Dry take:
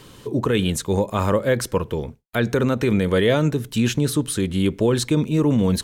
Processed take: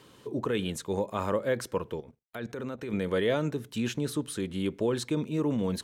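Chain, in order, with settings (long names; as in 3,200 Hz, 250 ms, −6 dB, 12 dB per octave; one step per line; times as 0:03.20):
high-pass filter 400 Hz 6 dB per octave
0:01.96–0:02.93: output level in coarse steps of 15 dB
spectral tilt −1.5 dB per octave
level −7.5 dB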